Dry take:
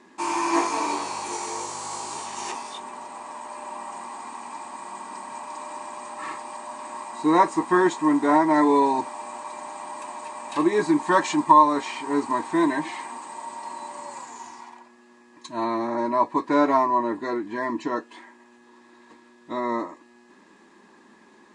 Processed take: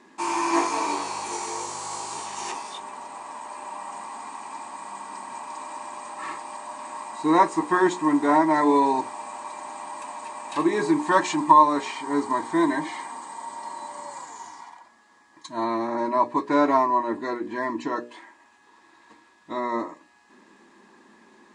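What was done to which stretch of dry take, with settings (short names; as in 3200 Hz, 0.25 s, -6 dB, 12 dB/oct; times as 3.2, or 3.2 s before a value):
11.92–15.68 notch 2600 Hz, Q 7.1
whole clip: notches 60/120/180/240/300/360/420/480/540/600 Hz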